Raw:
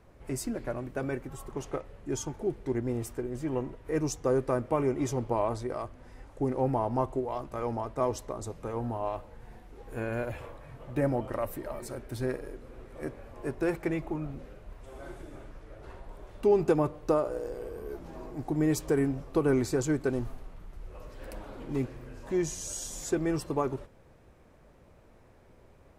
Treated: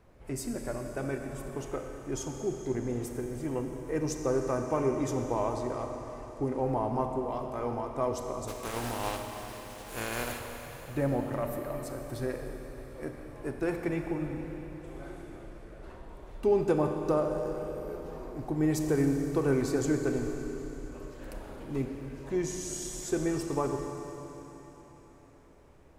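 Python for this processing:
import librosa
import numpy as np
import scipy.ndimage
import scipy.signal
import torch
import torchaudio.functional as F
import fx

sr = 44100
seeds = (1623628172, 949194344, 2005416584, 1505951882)

y = fx.spec_flatten(x, sr, power=0.44, at=(8.47, 10.38), fade=0.02)
y = fx.rev_schroeder(y, sr, rt60_s=4.0, comb_ms=29, drr_db=4.0)
y = F.gain(torch.from_numpy(y), -2.0).numpy()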